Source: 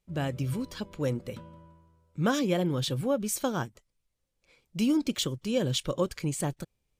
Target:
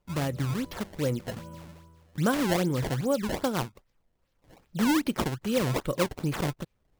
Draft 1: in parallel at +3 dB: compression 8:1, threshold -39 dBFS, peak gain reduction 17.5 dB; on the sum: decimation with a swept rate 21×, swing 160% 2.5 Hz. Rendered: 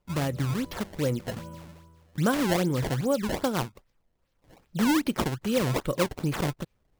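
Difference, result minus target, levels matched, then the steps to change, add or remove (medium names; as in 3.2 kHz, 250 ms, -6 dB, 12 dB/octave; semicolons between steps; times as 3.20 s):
compression: peak gain reduction -5.5 dB
change: compression 8:1, threshold -45.5 dBFS, peak gain reduction 23.5 dB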